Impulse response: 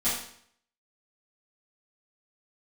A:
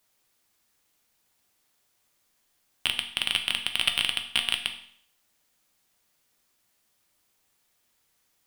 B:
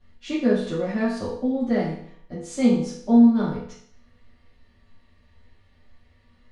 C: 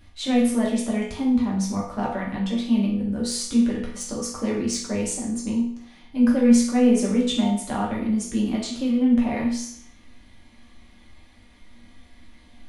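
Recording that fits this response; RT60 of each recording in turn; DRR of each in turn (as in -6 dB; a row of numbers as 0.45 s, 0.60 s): B; 0.60 s, 0.60 s, 0.60 s; 5.0 dB, -14.0 dB, -4.0 dB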